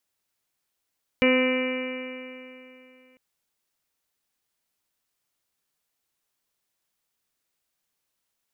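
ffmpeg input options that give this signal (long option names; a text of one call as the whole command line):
ffmpeg -f lavfi -i "aevalsrc='0.1*pow(10,-3*t/2.89)*sin(2*PI*255.07*t)+0.106*pow(10,-3*t/2.89)*sin(2*PI*510.52*t)+0.0106*pow(10,-3*t/2.89)*sin(2*PI*766.75*t)+0.0211*pow(10,-3*t/2.89)*sin(2*PI*1024.15*t)+0.0168*pow(10,-3*t/2.89)*sin(2*PI*1283.1*t)+0.0126*pow(10,-3*t/2.89)*sin(2*PI*1543.98*t)+0.0251*pow(10,-3*t/2.89)*sin(2*PI*1807.17*t)+0.0355*pow(10,-3*t/2.89)*sin(2*PI*2073.03*t)+0.075*pow(10,-3*t/2.89)*sin(2*PI*2341.92*t)+0.0141*pow(10,-3*t/2.89)*sin(2*PI*2614.22*t)+0.0316*pow(10,-3*t/2.89)*sin(2*PI*2890.25*t)':duration=1.95:sample_rate=44100" out.wav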